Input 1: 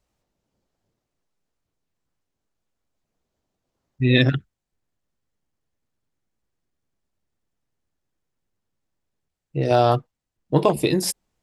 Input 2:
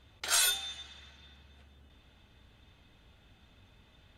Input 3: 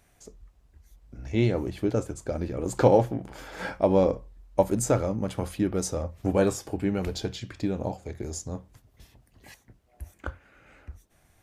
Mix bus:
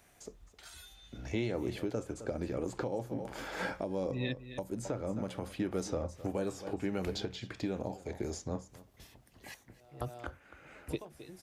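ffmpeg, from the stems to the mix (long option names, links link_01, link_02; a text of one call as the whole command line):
ffmpeg -i stem1.wav -i stem2.wav -i stem3.wav -filter_complex "[0:a]adelay=100,volume=-11.5dB,asplit=2[link_01][link_02];[link_02]volume=-18dB[link_03];[1:a]alimiter=level_in=1dB:limit=-24dB:level=0:latency=1:release=273,volume=-1dB,adelay=350,volume=-16dB[link_04];[2:a]lowshelf=frequency=120:gain=-10,volume=1.5dB,asplit=3[link_05][link_06][link_07];[link_06]volume=-20dB[link_08];[link_07]apad=whole_len=512694[link_09];[link_01][link_09]sidechaingate=range=-35dB:threshold=-47dB:ratio=16:detection=peak[link_10];[link_03][link_08]amix=inputs=2:normalize=0,aecho=0:1:261:1[link_11];[link_10][link_04][link_05][link_11]amix=inputs=4:normalize=0,acrossover=split=440|4800[link_12][link_13][link_14];[link_12]acompressor=threshold=-30dB:ratio=4[link_15];[link_13]acompressor=threshold=-35dB:ratio=4[link_16];[link_14]acompressor=threshold=-54dB:ratio=4[link_17];[link_15][link_16][link_17]amix=inputs=3:normalize=0,alimiter=limit=-23.5dB:level=0:latency=1:release=493" out.wav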